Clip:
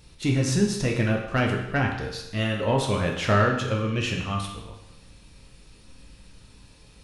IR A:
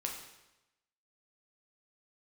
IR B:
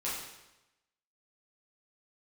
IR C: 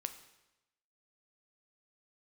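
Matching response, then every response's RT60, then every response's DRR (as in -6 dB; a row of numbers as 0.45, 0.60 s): A; 0.95, 0.95, 0.95 s; 0.0, -9.0, 8.0 dB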